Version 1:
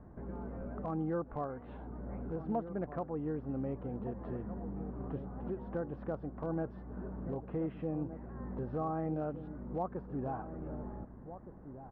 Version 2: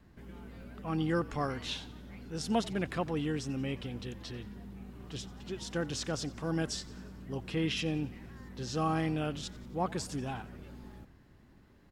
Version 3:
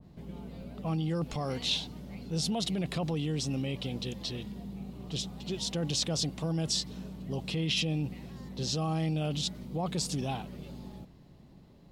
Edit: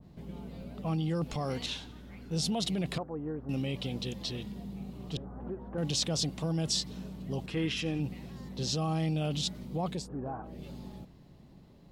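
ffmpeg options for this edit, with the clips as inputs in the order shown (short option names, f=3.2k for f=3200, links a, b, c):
-filter_complex "[1:a]asplit=2[a][b];[0:a]asplit=3[c][d][e];[2:a]asplit=6[f][g][h][i][j][k];[f]atrim=end=1.662[l];[a]atrim=start=1.658:end=2.312[m];[g]atrim=start=2.308:end=2.982[n];[c]atrim=start=2.978:end=3.492[o];[h]atrim=start=3.488:end=5.172[p];[d]atrim=start=5.168:end=5.782[q];[i]atrim=start=5.778:end=7.462[r];[b]atrim=start=7.458:end=8.002[s];[j]atrim=start=7.998:end=10.09[t];[e]atrim=start=9.85:end=10.66[u];[k]atrim=start=10.42[v];[l][m]acrossfade=d=0.004:c1=hsin:c2=hsin[w];[w][n]acrossfade=d=0.004:c1=hsin:c2=hsin[x];[x][o]acrossfade=d=0.004:c1=hsin:c2=hsin[y];[y][p]acrossfade=d=0.004:c1=hsin:c2=hsin[z];[z][q]acrossfade=d=0.004:c1=hsin:c2=hsin[aa];[aa][r]acrossfade=d=0.004:c1=hsin:c2=hsin[ab];[ab][s]acrossfade=d=0.004:c1=hsin:c2=hsin[ac];[ac][t]acrossfade=d=0.004:c1=hsin:c2=hsin[ad];[ad][u]acrossfade=d=0.24:c1=tri:c2=tri[ae];[ae][v]acrossfade=d=0.24:c1=tri:c2=tri"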